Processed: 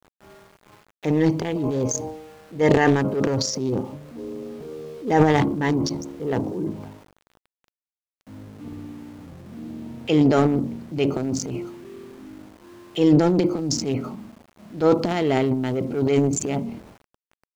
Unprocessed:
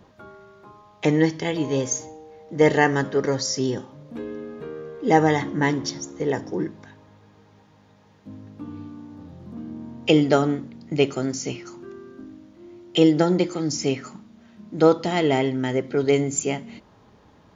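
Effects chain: Wiener smoothing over 25 samples; transient shaper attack -6 dB, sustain +11 dB; sample gate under -45 dBFS

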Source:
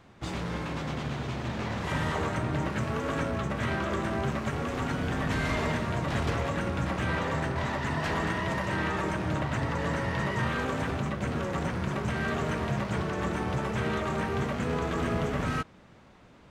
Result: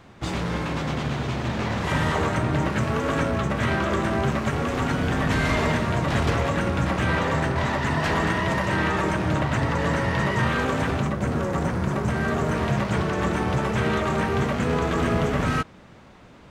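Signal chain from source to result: 11.07–12.55 bell 3000 Hz -6 dB 1.6 oct; gain +6.5 dB

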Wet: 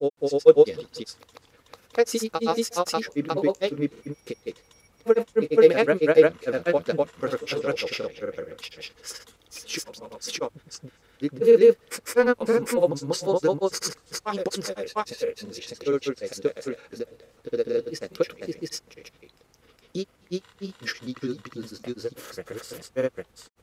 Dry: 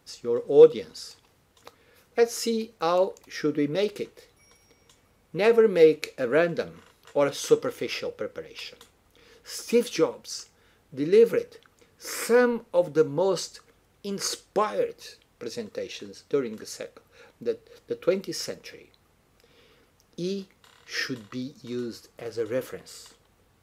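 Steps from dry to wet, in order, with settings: grains, spray 0.488 s, pitch spread up and down by 0 st; gain +3 dB

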